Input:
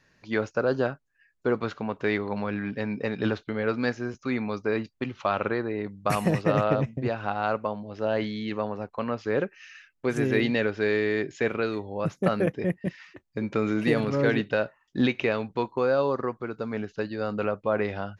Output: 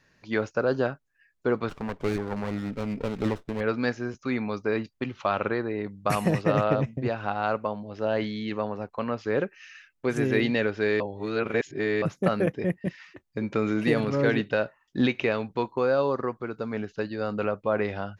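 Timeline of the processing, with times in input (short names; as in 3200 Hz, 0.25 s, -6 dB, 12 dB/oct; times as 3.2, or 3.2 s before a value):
1.69–3.61 running maximum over 17 samples
11–12.02 reverse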